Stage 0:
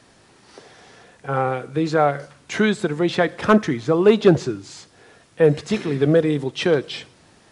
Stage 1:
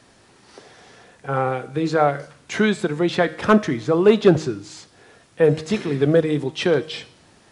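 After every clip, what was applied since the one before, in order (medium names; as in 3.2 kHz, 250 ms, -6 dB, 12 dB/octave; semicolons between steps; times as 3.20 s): de-hum 156.9 Hz, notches 37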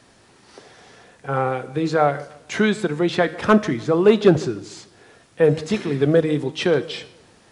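filtered feedback delay 149 ms, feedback 40%, level -20.5 dB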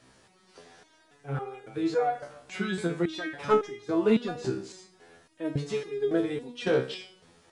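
resonator arpeggio 3.6 Hz 65–410 Hz; trim +2 dB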